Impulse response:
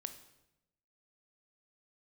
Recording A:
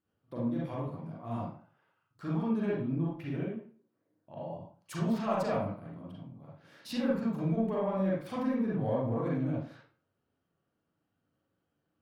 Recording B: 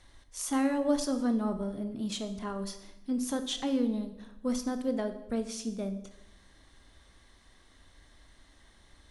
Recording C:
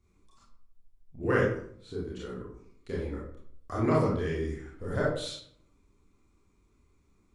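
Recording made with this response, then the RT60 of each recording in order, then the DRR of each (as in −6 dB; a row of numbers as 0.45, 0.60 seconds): B; 0.45, 0.90, 0.60 seconds; −6.0, 8.5, −6.5 decibels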